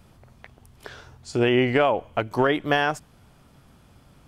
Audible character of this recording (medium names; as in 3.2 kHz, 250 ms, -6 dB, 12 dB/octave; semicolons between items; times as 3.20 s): noise floor -56 dBFS; spectral tilt -4.0 dB/octave